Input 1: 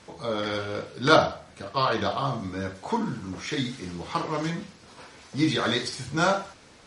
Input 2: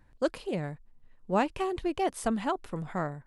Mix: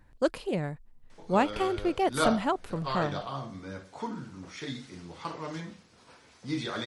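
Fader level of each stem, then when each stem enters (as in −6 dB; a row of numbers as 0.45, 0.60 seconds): −9.0, +2.0 decibels; 1.10, 0.00 seconds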